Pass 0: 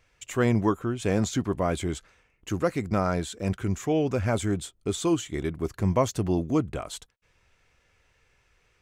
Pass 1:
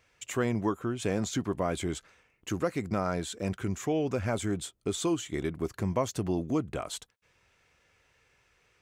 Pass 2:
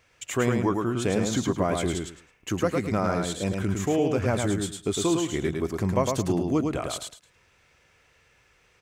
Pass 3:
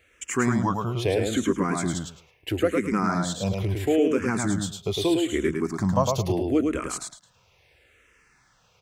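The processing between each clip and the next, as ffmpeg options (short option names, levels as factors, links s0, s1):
-af "acompressor=threshold=0.0447:ratio=2,highpass=f=110:p=1"
-af "aecho=1:1:107|214|321:0.631|0.133|0.0278,volume=1.58"
-filter_complex "[0:a]asplit=2[s0][s1];[s1]afreqshift=-0.76[s2];[s0][s2]amix=inputs=2:normalize=1,volume=1.58"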